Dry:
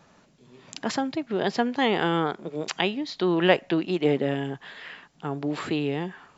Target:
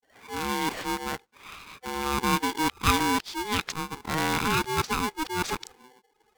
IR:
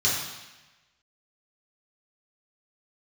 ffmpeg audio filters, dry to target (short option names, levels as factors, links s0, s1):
-filter_complex "[0:a]areverse,asplit=2[s0][s1];[s1]volume=7.5,asoftclip=hard,volume=0.133,volume=0.447[s2];[s0][s2]amix=inputs=2:normalize=0,afftdn=nr=19:nf=-45,aeval=exprs='val(0)*sgn(sin(2*PI*630*n/s))':c=same,volume=0.562"